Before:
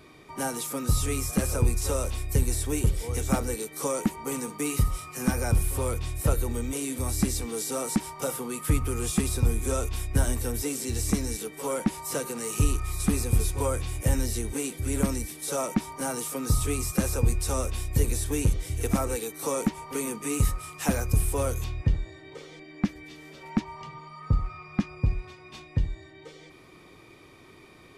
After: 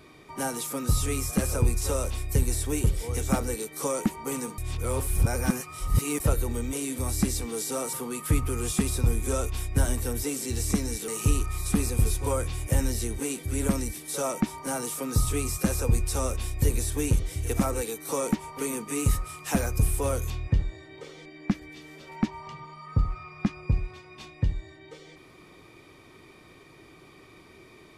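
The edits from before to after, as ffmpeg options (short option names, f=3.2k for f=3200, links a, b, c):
-filter_complex "[0:a]asplit=5[a][b][c][d][e];[a]atrim=end=4.582[f];[b]atrim=start=4.578:end=6.202,asetpts=PTS-STARTPTS,areverse[g];[c]atrim=start=6.198:end=7.932[h];[d]atrim=start=8.318:end=11.472[i];[e]atrim=start=12.418[j];[f][g]acrossfade=d=0.004:c1=hsin:c2=hsin[k];[k][h]acrossfade=d=0.004:c1=hsin:c2=hsin[l];[l][i]acrossfade=d=0.004:c1=hsin:c2=hsin[m];[m][j]acrossfade=d=0.004:c1=hsin:c2=hsin"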